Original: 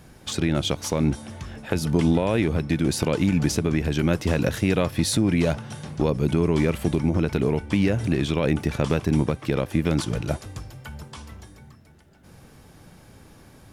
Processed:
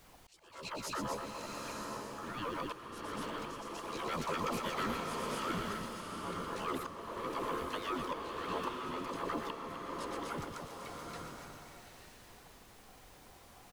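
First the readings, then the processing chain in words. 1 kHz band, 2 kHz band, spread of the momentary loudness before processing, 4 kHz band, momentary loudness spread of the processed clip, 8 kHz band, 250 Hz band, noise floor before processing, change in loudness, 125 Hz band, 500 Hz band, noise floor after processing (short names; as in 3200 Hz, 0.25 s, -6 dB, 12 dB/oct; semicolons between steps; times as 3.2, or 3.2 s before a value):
-2.5 dB, -11.0 dB, 12 LU, -12.0 dB, 19 LU, -14.5 dB, -20.5 dB, -51 dBFS, -16.0 dB, -26.0 dB, -15.5 dB, -58 dBFS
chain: median-filter separation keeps percussive; loudspeakers at several distances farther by 41 m -8 dB, 85 m -8 dB; ring modulator 760 Hz; dispersion lows, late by 92 ms, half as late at 470 Hz; added noise pink -53 dBFS; auto swell 0.651 s; bloom reverb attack 0.9 s, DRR 2 dB; gain -7.5 dB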